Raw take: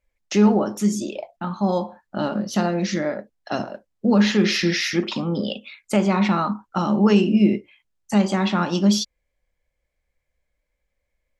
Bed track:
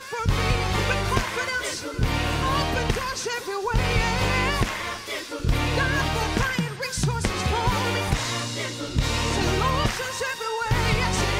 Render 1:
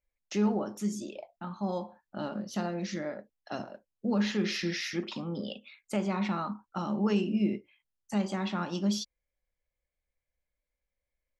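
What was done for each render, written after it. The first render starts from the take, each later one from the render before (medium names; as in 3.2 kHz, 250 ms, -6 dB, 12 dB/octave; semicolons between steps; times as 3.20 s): trim -11.5 dB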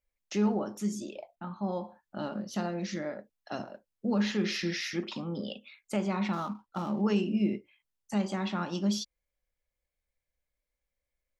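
1.35–1.84 s: distance through air 180 m; 6.33–7.02 s: median filter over 15 samples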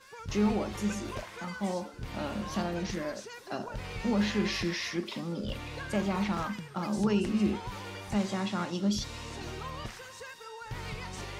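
add bed track -17 dB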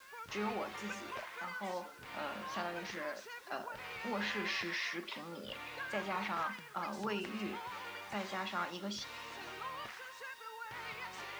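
band-pass filter 1.6 kHz, Q 0.74; bit crusher 10-bit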